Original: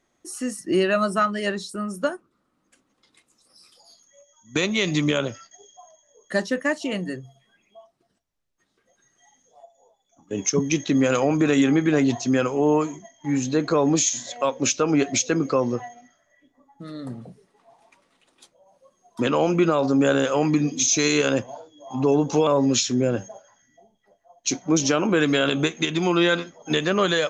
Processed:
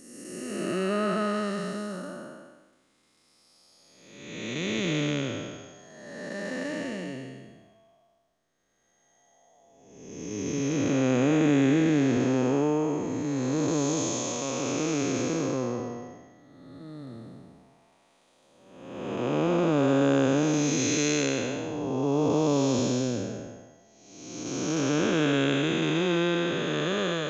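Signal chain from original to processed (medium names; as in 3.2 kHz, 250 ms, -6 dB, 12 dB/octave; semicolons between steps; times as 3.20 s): spectral blur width 611 ms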